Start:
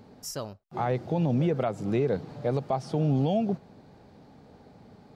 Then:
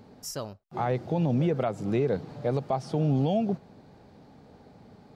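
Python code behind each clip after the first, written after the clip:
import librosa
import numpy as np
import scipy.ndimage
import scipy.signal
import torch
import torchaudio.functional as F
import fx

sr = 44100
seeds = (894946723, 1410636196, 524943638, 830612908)

y = x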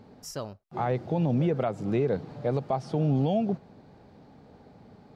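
y = fx.high_shelf(x, sr, hz=5800.0, db=-7.0)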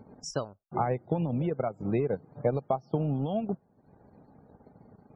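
y = fx.transient(x, sr, attack_db=7, sustain_db=-11)
y = fx.rider(y, sr, range_db=3, speed_s=0.5)
y = fx.spec_topn(y, sr, count=64)
y = F.gain(torch.from_numpy(y), -3.5).numpy()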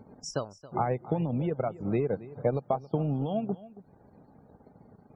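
y = x + 10.0 ** (-18.0 / 20.0) * np.pad(x, (int(275 * sr / 1000.0), 0))[:len(x)]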